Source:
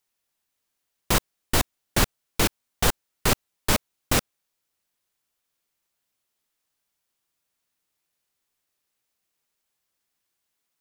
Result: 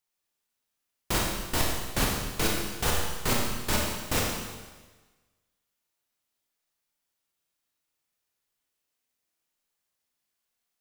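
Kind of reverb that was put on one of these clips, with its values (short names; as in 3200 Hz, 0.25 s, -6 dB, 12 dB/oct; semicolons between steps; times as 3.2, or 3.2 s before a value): Schroeder reverb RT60 1.3 s, combs from 26 ms, DRR -2 dB; gain -7 dB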